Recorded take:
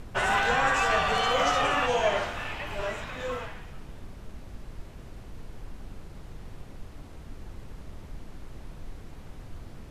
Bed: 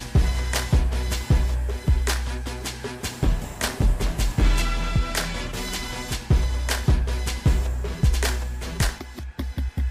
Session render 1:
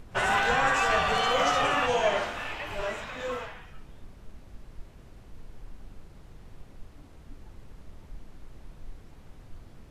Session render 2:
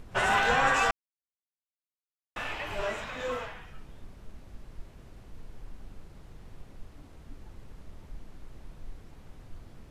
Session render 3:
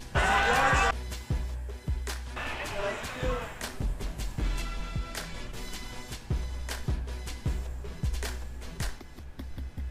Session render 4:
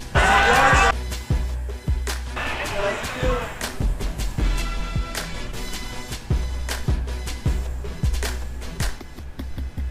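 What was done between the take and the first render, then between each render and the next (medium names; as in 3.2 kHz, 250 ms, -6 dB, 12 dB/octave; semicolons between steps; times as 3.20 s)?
noise print and reduce 6 dB
0.91–2.36 s: mute
add bed -11.5 dB
trim +8.5 dB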